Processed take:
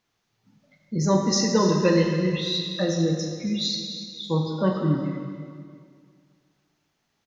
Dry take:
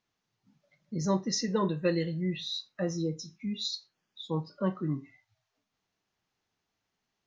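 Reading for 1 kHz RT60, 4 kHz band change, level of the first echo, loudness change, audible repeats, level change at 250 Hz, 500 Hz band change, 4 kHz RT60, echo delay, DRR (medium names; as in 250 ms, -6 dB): 2.1 s, +9.0 dB, -13.5 dB, +8.5 dB, 1, +8.5 dB, +9.0 dB, 1.9 s, 274 ms, 1.0 dB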